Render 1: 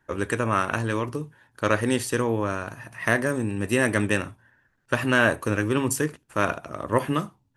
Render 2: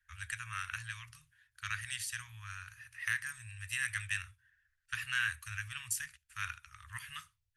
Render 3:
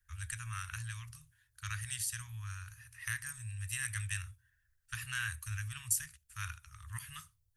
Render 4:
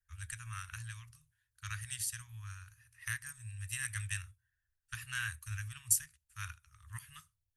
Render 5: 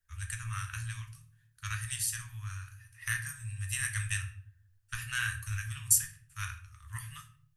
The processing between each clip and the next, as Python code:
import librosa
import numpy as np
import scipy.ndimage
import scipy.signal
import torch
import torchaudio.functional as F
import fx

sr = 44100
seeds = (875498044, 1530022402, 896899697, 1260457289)

y1 = scipy.signal.sosfilt(scipy.signal.cheby2(4, 60, [210.0, 660.0], 'bandstop', fs=sr, output='sos'), x)
y1 = y1 * librosa.db_to_amplitude(-7.5)
y2 = fx.peak_eq(y1, sr, hz=2100.0, db=-13.5, octaves=2.7)
y2 = y2 * librosa.db_to_amplitude(7.5)
y3 = fx.upward_expand(y2, sr, threshold_db=-54.0, expansion=1.5)
y3 = y3 * librosa.db_to_amplitude(3.5)
y4 = fx.room_shoebox(y3, sr, seeds[0], volume_m3=57.0, walls='mixed', distance_m=0.42)
y4 = y4 * librosa.db_to_amplitude(4.0)